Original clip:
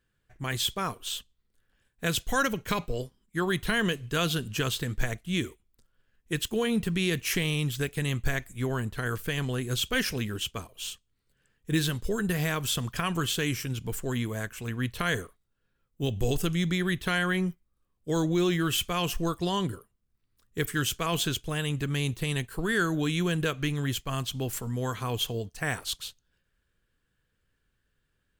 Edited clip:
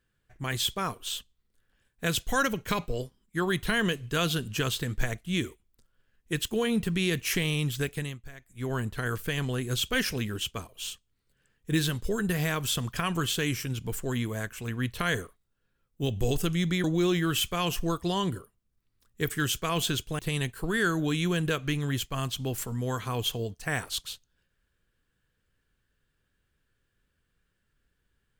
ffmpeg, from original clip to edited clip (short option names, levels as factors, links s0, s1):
-filter_complex "[0:a]asplit=5[s0][s1][s2][s3][s4];[s0]atrim=end=8.19,asetpts=PTS-STARTPTS,afade=t=out:st=7.91:d=0.28:silence=0.133352[s5];[s1]atrim=start=8.19:end=8.47,asetpts=PTS-STARTPTS,volume=0.133[s6];[s2]atrim=start=8.47:end=16.842,asetpts=PTS-STARTPTS,afade=t=in:d=0.28:silence=0.133352[s7];[s3]atrim=start=18.208:end=21.562[s8];[s4]atrim=start=22.138[s9];[s5][s6][s7]concat=n=3:v=0:a=1[s10];[s10][s8]acrossfade=d=0.004:c1=hsin:c2=hsin[s11];[s11][s9]acrossfade=d=0.004:c1=hsin:c2=hsin"